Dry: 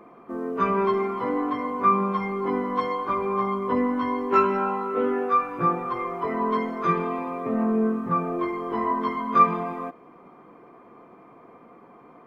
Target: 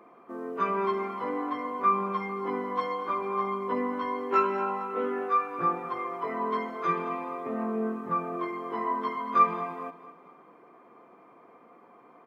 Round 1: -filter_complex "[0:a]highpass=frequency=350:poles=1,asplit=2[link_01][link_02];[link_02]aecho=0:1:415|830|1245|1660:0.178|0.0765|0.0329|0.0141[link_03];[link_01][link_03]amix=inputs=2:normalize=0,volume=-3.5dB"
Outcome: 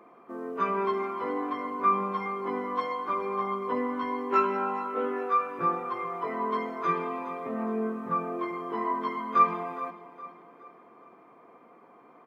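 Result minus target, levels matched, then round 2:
echo 191 ms late
-filter_complex "[0:a]highpass=frequency=350:poles=1,asplit=2[link_01][link_02];[link_02]aecho=0:1:224|448|672|896:0.178|0.0765|0.0329|0.0141[link_03];[link_01][link_03]amix=inputs=2:normalize=0,volume=-3.5dB"

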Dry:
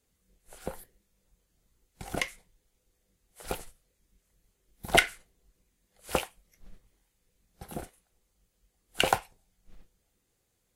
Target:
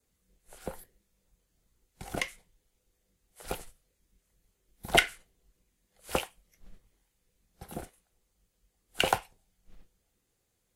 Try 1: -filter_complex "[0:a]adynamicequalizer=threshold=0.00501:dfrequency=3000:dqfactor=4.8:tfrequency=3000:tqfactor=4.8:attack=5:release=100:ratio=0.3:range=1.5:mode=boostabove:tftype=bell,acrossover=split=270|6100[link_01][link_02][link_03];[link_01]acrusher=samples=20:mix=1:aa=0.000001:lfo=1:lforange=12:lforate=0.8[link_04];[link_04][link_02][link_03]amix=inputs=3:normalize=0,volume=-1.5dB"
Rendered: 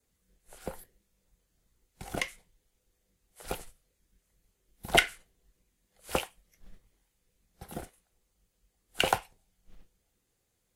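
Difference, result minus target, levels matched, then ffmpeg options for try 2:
sample-and-hold swept by an LFO: distortion +13 dB
-filter_complex "[0:a]adynamicequalizer=threshold=0.00501:dfrequency=3000:dqfactor=4.8:tfrequency=3000:tqfactor=4.8:attack=5:release=100:ratio=0.3:range=1.5:mode=boostabove:tftype=bell,acrossover=split=270|6100[link_01][link_02][link_03];[link_01]acrusher=samples=5:mix=1:aa=0.000001:lfo=1:lforange=3:lforate=0.8[link_04];[link_04][link_02][link_03]amix=inputs=3:normalize=0,volume=-1.5dB"

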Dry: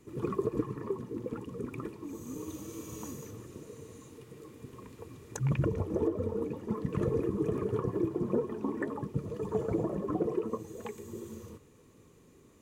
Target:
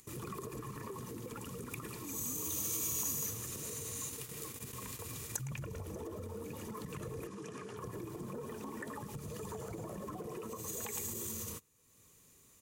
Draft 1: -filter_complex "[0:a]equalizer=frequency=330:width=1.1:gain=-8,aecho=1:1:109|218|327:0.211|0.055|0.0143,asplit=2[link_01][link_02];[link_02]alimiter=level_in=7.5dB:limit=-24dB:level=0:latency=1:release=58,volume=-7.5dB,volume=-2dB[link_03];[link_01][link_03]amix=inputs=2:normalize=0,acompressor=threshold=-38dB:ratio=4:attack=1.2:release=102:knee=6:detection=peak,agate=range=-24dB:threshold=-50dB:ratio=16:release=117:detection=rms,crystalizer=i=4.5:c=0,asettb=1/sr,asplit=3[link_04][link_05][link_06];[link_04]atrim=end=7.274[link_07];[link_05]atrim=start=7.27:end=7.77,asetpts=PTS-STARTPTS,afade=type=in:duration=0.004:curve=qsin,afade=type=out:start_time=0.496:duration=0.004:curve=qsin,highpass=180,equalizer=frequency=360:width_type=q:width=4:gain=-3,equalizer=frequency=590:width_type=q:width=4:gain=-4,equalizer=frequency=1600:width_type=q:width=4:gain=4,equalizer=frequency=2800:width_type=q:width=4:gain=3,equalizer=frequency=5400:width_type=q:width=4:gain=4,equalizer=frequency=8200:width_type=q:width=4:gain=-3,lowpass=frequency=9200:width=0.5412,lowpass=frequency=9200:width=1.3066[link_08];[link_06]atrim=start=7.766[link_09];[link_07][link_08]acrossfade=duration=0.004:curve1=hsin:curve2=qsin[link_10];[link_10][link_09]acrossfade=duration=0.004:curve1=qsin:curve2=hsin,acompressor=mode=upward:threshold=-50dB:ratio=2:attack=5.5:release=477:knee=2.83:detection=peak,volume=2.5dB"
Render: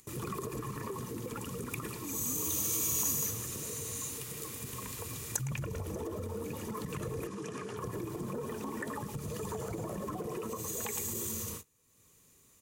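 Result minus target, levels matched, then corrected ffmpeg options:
downward compressor: peak gain reduction −5.5 dB
-filter_complex "[0:a]equalizer=frequency=330:width=1.1:gain=-8,aecho=1:1:109|218|327:0.211|0.055|0.0143,asplit=2[link_01][link_02];[link_02]alimiter=level_in=7.5dB:limit=-24dB:level=0:latency=1:release=58,volume=-7.5dB,volume=-2dB[link_03];[link_01][link_03]amix=inputs=2:normalize=0,acompressor=threshold=-45dB:ratio=4:attack=1.2:release=102:knee=6:detection=peak,agate=range=-24dB:threshold=-50dB:ratio=16:release=117:detection=rms,crystalizer=i=4.5:c=0,asettb=1/sr,asplit=3[link_04][link_05][link_06];[link_04]atrim=end=7.274[link_07];[link_05]atrim=start=7.27:end=7.77,asetpts=PTS-STARTPTS,afade=type=in:duration=0.004:curve=qsin,afade=type=out:start_time=0.496:duration=0.004:curve=qsin,highpass=180,equalizer=frequency=360:width_type=q:width=4:gain=-3,equalizer=frequency=590:width_type=q:width=4:gain=-4,equalizer=frequency=1600:width_type=q:width=4:gain=4,equalizer=frequency=2800:width_type=q:width=4:gain=3,equalizer=frequency=5400:width_type=q:width=4:gain=4,equalizer=frequency=8200:width_type=q:width=4:gain=-3,lowpass=frequency=9200:width=0.5412,lowpass=frequency=9200:width=1.3066[link_08];[link_06]atrim=start=7.766[link_09];[link_07][link_08]acrossfade=duration=0.004:curve1=hsin:curve2=qsin[link_10];[link_10][link_09]acrossfade=duration=0.004:curve1=qsin:curve2=hsin,acompressor=mode=upward:threshold=-50dB:ratio=2:attack=5.5:release=477:knee=2.83:detection=peak,volume=2.5dB"

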